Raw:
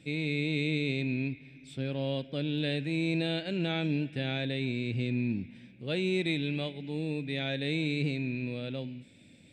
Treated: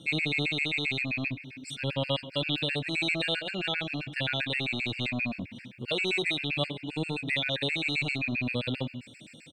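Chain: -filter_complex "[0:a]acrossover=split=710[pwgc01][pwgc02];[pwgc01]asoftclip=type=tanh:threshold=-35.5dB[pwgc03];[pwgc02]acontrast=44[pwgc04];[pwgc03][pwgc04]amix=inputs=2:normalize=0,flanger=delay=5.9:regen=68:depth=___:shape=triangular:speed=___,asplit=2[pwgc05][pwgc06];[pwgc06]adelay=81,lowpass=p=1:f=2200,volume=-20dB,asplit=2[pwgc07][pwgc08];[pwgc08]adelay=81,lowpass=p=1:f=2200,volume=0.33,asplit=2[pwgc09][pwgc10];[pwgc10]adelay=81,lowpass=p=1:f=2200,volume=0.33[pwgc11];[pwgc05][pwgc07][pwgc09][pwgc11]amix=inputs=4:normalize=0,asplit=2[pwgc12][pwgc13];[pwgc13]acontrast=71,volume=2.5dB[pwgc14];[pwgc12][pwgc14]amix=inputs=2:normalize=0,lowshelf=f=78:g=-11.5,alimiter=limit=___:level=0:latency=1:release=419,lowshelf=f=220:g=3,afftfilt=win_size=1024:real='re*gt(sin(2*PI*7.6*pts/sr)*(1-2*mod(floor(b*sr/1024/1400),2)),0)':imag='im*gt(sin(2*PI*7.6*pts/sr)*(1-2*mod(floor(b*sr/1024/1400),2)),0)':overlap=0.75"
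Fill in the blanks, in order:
2.6, 0.42, -14.5dB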